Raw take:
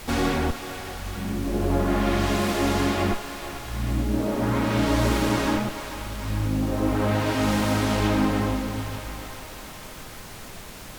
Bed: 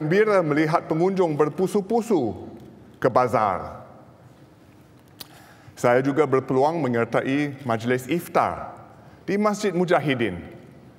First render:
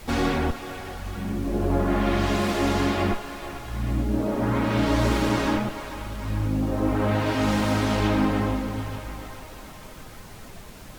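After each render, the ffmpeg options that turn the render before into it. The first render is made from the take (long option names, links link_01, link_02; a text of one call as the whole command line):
ffmpeg -i in.wav -af "afftdn=noise_reduction=6:noise_floor=-40" out.wav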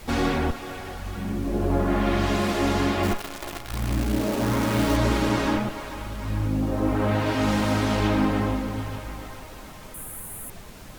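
ffmpeg -i in.wav -filter_complex "[0:a]asettb=1/sr,asplit=3[link_01][link_02][link_03];[link_01]atrim=end=3.034[link_04];[link_02]atrim=start=3.03:end=4.97,asetpts=PTS-STARTPTS,afade=type=in:duration=0.004:curve=qsin,afade=type=out:start_time=1.936:duration=0.004:curve=qsin,acrusher=bits=6:dc=4:mix=0:aa=0.000001[link_05];[link_03]atrim=start=4.966[link_06];[link_04][link_05]acrossfade=duration=0.004:curve1=hsin:curve2=qsin[link_07];[link_07][link_06]acrossfade=duration=0.004:curve1=qsin:curve2=hsin,asettb=1/sr,asplit=3[link_08][link_09][link_10];[link_08]atrim=end=5.594[link_11];[link_09]atrim=start=5.59:end=6.1,asetpts=PTS-STARTPTS,afade=type=in:duration=0.004:curve=qsin,afade=type=out:start_time=0.506:duration=0.004:curve=qsin,aeval=exprs='val(0)*gte(abs(val(0)),0.00299)':channel_layout=same[link_12];[link_10]atrim=start=6.096[link_13];[link_11][link_12]acrossfade=duration=0.004:curve1=hsin:curve2=qsin[link_14];[link_14][link_13]acrossfade=duration=0.004:curve1=qsin:curve2=hsin,asettb=1/sr,asplit=3[link_15][link_16][link_17];[link_15]atrim=end=9.944[link_18];[link_16]atrim=start=9.94:end=10.5,asetpts=PTS-STARTPTS,afade=type=in:duration=0.004:curve=qsin,afade=type=out:start_time=0.556:duration=0.004:curve=qsin,highshelf=frequency=7500:width_type=q:width=3:gain=13[link_19];[link_17]atrim=start=10.496[link_20];[link_18][link_19]acrossfade=duration=0.004:curve1=hsin:curve2=qsin[link_21];[link_21][link_20]acrossfade=duration=0.004:curve1=qsin:curve2=hsin" out.wav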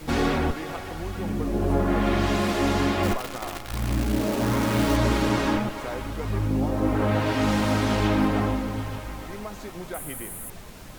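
ffmpeg -i in.wav -i bed.wav -filter_complex "[1:a]volume=-16.5dB[link_01];[0:a][link_01]amix=inputs=2:normalize=0" out.wav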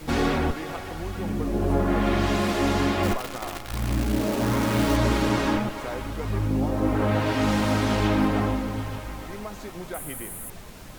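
ffmpeg -i in.wav -af anull out.wav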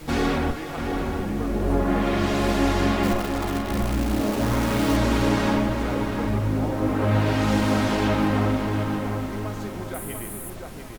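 ffmpeg -i in.wav -filter_complex "[0:a]asplit=2[link_01][link_02];[link_02]adelay=47,volume=-12dB[link_03];[link_01][link_03]amix=inputs=2:normalize=0,asplit=2[link_04][link_05];[link_05]adelay=694,lowpass=frequency=2000:poles=1,volume=-4.5dB,asplit=2[link_06][link_07];[link_07]adelay=694,lowpass=frequency=2000:poles=1,volume=0.39,asplit=2[link_08][link_09];[link_09]adelay=694,lowpass=frequency=2000:poles=1,volume=0.39,asplit=2[link_10][link_11];[link_11]adelay=694,lowpass=frequency=2000:poles=1,volume=0.39,asplit=2[link_12][link_13];[link_13]adelay=694,lowpass=frequency=2000:poles=1,volume=0.39[link_14];[link_04][link_06][link_08][link_10][link_12][link_14]amix=inputs=6:normalize=0" out.wav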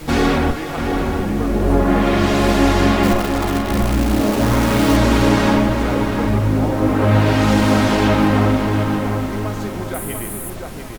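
ffmpeg -i in.wav -af "volume=7dB,alimiter=limit=-2dB:level=0:latency=1" out.wav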